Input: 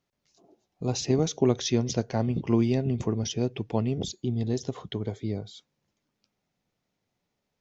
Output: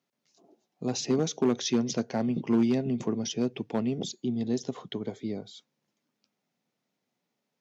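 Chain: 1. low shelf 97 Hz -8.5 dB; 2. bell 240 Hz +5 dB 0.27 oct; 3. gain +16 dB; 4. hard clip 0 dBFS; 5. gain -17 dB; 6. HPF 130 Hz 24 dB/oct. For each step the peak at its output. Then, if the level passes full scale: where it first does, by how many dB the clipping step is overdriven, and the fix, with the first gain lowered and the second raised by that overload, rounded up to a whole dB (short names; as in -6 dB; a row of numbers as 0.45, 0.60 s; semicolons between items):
-10.0, -9.0, +7.0, 0.0, -17.0, -13.5 dBFS; step 3, 7.0 dB; step 3 +9 dB, step 5 -10 dB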